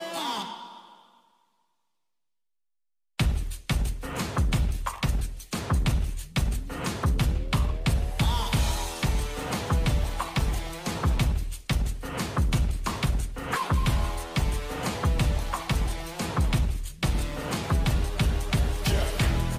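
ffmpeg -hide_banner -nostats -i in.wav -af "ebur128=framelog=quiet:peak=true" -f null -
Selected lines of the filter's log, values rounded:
Integrated loudness:
  I:         -28.3 LUFS
  Threshold: -38.5 LUFS
Loudness range:
  LRA:         4.2 LU
  Threshold: -48.7 LUFS
  LRA low:   -31.7 LUFS
  LRA high:  -27.5 LUFS
True peak:
  Peak:      -14.3 dBFS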